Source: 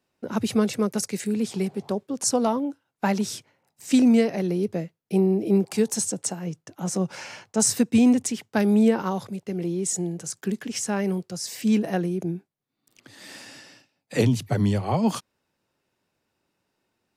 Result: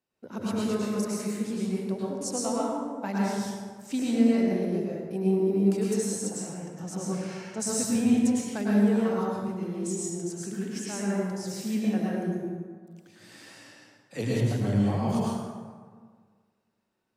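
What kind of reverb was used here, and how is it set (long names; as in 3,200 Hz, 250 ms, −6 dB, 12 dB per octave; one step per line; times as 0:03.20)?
dense smooth reverb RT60 1.7 s, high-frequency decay 0.5×, pre-delay 90 ms, DRR −6 dB
level −11.5 dB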